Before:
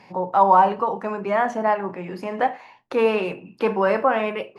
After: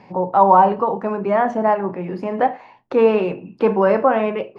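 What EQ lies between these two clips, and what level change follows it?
Bessel low-pass filter 4,500 Hz, order 2
tilt shelving filter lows +8.5 dB, about 1,500 Hz
high-shelf EQ 3,000 Hz +11 dB
−2.0 dB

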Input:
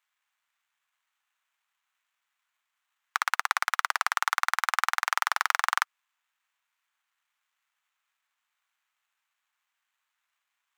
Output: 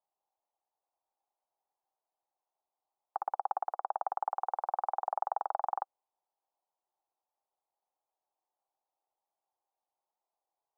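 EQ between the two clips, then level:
elliptic band-pass filter 330–810 Hz, stop band 60 dB
+8.0 dB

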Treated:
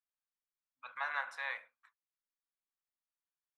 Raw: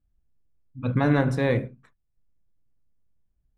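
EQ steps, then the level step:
inverse Chebyshev high-pass filter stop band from 380 Hz, stop band 50 dB
high-shelf EQ 3,900 Hz −12 dB
−3.5 dB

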